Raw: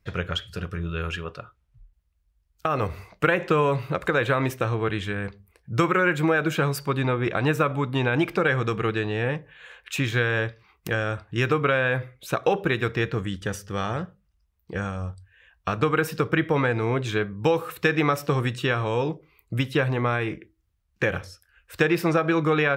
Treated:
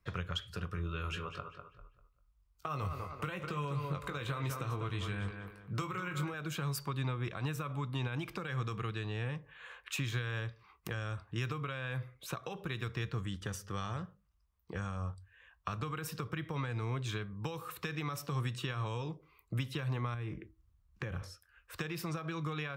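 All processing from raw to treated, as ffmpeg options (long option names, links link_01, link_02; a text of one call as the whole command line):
ffmpeg -i in.wav -filter_complex "[0:a]asettb=1/sr,asplit=3[link_01][link_02][link_03];[link_01]atrim=end=0.754[link_04];[link_02]atrim=start=0.75:end=6.34,asetpts=PTS-STARTPTS,afade=type=in:duration=0.004:curve=qsin,afade=type=out:start_time=5.586:duration=0.004:curve=qsin,bandreject=frequency=1700:width=14,asplit=2[link_05][link_06];[link_06]adelay=21,volume=-8dB[link_07];[link_05][link_07]amix=inputs=2:normalize=0,atrim=end_sample=246519,asplit=2[link_08][link_09];[link_09]adelay=197,lowpass=frequency=4500:poles=1,volume=-10dB,asplit=2[link_10][link_11];[link_11]adelay=197,lowpass=frequency=4500:poles=1,volume=0.32,asplit=2[link_12][link_13];[link_13]adelay=197,lowpass=frequency=4500:poles=1,volume=0.32,asplit=2[link_14][link_15];[link_15]adelay=197,lowpass=frequency=4500:poles=1,volume=0.32[link_16];[link_08][link_10][link_12][link_14][link_16]amix=inputs=5:normalize=0,atrim=end_sample=246519[link_17];[link_03]atrim=start=6.336[link_18];[link_04][link_17]acrossfade=duration=0.004:curve1=hsin:curve2=qsin[link_19];[link_19][link_18]acrossfade=duration=0.004:curve1=qsin:curve2=hsin,asettb=1/sr,asplit=3[link_20][link_21][link_22];[link_20]atrim=end=20.144[link_23];[link_21]atrim=start=20.14:end=21.23,asetpts=PTS-STARTPTS,afade=type=in:duration=0.004:curve=qsin,afade=type=out:start_time=1.086:duration=0.004:curve=qsin,lowshelf=frequency=260:gain=11.5,acompressor=threshold=-31dB:ratio=2.5:attack=3.2:release=140:knee=1:detection=peak[link_24];[link_22]atrim=start=21.226[link_25];[link_23][link_24]acrossfade=duration=0.004:curve1=hsin:curve2=qsin[link_26];[link_26][link_25]acrossfade=duration=0.004:curve1=qsin:curve2=hsin,alimiter=limit=-15dB:level=0:latency=1:release=74,acrossover=split=170|3000[link_27][link_28][link_29];[link_28]acompressor=threshold=-35dB:ratio=10[link_30];[link_27][link_30][link_29]amix=inputs=3:normalize=0,equalizer=frequency=1100:width=2.6:gain=8.5,volume=-6.5dB" out.wav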